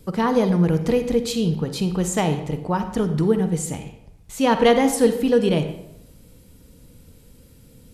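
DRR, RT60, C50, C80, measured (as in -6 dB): 8.0 dB, 0.85 s, 9.0 dB, 11.5 dB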